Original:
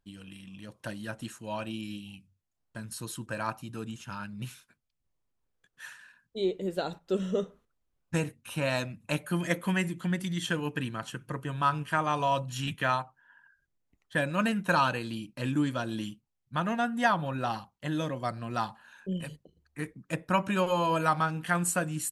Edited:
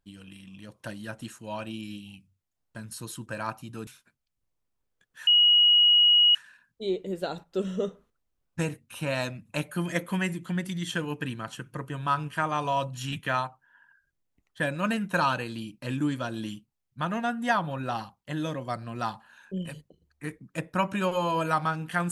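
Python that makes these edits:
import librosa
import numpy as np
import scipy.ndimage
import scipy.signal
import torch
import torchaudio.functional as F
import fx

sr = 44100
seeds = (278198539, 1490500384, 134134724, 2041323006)

y = fx.edit(x, sr, fx.cut(start_s=3.87, length_s=0.63),
    fx.insert_tone(at_s=5.9, length_s=1.08, hz=2900.0, db=-15.5), tone=tone)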